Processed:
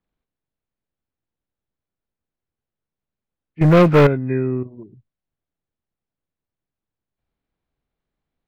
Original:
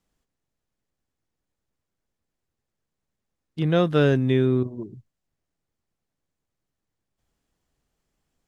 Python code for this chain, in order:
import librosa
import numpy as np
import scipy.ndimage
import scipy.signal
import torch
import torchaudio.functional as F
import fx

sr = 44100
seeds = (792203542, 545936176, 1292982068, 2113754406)

y = fx.freq_compress(x, sr, knee_hz=1200.0, ratio=1.5)
y = scipy.signal.sosfilt(scipy.signal.butter(2, 2700.0, 'lowpass', fs=sr, output='sos'), y)
y = fx.leveller(y, sr, passes=3, at=(3.61, 4.07))
y = fx.upward_expand(y, sr, threshold_db=-27.0, expansion=1.5)
y = F.gain(torch.from_numpy(y), 3.0).numpy()